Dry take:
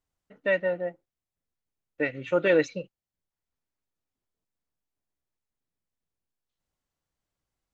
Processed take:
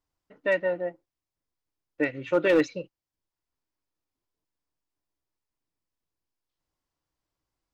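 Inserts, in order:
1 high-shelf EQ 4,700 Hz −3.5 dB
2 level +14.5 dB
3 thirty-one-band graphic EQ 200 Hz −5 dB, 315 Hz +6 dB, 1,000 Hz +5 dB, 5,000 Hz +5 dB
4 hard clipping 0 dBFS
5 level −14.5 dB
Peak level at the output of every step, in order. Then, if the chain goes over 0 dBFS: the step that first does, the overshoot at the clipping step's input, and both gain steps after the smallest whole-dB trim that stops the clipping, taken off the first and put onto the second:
−12.0, +2.5, +4.5, 0.0, −14.5 dBFS
step 2, 4.5 dB
step 2 +9.5 dB, step 5 −9.5 dB

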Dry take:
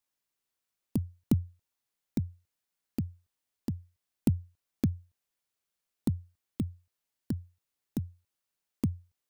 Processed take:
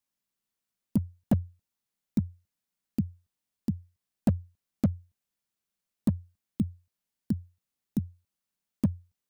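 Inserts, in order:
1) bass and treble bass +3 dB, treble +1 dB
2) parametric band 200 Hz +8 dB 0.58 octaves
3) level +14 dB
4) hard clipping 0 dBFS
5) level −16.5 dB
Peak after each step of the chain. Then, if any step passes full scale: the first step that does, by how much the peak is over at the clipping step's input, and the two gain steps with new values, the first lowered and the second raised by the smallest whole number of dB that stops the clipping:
−11.0, −8.0, +6.0, 0.0, −16.5 dBFS
step 3, 6.0 dB
step 3 +8 dB, step 5 −10.5 dB

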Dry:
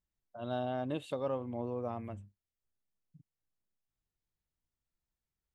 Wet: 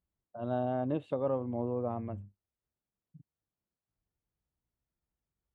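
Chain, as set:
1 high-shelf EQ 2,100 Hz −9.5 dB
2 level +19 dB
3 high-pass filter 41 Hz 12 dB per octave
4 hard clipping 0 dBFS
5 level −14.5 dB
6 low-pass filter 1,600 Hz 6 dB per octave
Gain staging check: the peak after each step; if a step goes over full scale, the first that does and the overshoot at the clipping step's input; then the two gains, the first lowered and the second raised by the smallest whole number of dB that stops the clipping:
−24.5, −5.5, −5.0, −5.0, −19.5, −20.0 dBFS
no step passes full scale

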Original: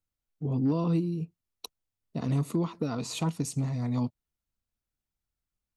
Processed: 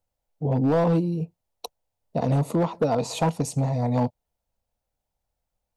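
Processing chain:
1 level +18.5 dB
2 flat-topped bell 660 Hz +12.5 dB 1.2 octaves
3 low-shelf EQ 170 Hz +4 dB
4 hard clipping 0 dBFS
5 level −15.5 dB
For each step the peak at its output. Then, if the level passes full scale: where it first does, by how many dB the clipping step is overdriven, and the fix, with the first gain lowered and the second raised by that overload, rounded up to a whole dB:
+1.5, +6.0, +7.0, 0.0, −15.5 dBFS
step 1, 7.0 dB
step 1 +11.5 dB, step 5 −8.5 dB

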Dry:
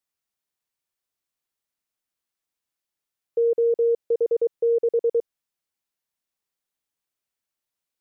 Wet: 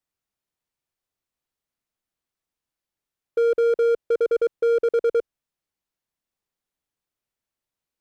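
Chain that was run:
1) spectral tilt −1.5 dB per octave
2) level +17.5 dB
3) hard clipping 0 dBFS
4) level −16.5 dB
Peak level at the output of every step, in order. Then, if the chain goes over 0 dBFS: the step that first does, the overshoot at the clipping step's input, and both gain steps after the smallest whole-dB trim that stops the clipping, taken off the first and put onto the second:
−14.5, +3.0, 0.0, −16.5 dBFS
step 2, 3.0 dB
step 2 +14.5 dB, step 4 −13.5 dB

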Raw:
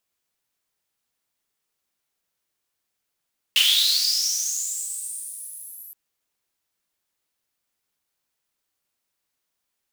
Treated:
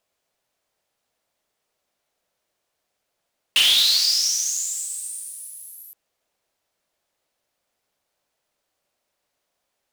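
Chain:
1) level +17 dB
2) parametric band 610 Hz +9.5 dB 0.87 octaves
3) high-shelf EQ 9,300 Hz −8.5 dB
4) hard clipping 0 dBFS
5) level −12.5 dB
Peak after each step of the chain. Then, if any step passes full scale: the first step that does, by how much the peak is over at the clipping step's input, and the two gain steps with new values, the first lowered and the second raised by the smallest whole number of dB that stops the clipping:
+10.5, +10.5, +9.0, 0.0, −12.5 dBFS
step 1, 9.0 dB
step 1 +8 dB, step 5 −3.5 dB

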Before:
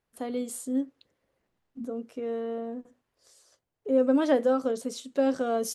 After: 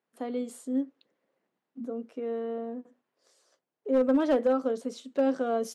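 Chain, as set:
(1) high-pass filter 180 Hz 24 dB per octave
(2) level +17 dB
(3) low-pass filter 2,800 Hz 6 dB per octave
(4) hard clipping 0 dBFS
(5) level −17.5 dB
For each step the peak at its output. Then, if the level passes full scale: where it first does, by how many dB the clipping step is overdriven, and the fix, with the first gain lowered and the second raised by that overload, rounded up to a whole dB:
−11.5, +5.5, +5.0, 0.0, −17.5 dBFS
step 2, 5.0 dB
step 2 +12 dB, step 5 −12.5 dB

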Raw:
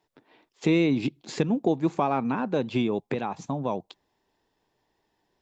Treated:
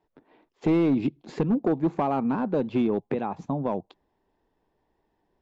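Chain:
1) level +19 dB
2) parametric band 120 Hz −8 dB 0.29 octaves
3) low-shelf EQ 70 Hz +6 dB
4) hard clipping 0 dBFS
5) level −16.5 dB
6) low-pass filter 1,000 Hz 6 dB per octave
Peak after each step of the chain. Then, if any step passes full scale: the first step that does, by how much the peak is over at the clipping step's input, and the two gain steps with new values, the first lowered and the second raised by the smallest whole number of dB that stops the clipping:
+8.0, +8.0, +8.5, 0.0, −16.5, −16.5 dBFS
step 1, 8.5 dB
step 1 +10 dB, step 5 −7.5 dB

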